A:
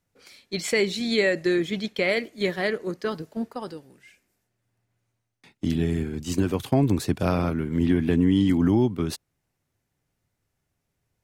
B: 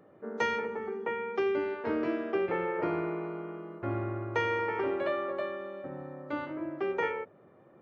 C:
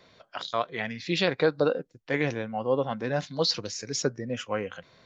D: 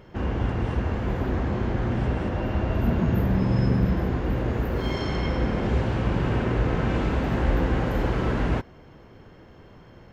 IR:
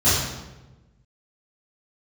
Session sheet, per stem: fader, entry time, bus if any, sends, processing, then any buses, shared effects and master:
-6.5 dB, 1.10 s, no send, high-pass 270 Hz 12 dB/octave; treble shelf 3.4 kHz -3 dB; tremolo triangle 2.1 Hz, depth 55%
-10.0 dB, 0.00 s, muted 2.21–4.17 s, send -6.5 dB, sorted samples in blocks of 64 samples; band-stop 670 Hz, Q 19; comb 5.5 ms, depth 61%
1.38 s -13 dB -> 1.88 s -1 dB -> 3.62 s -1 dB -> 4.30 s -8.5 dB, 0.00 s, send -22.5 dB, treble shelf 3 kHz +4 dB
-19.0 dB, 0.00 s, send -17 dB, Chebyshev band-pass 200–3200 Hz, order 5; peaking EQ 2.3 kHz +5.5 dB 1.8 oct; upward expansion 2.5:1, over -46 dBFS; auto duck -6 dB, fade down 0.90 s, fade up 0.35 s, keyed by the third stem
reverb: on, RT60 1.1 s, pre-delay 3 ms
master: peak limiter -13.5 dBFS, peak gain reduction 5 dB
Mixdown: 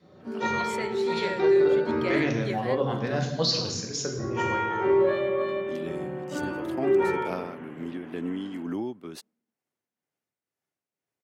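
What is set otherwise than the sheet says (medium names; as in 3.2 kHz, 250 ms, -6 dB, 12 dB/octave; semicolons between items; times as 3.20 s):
stem A: entry 1.10 s -> 0.05 s; stem B: missing sorted samples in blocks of 64 samples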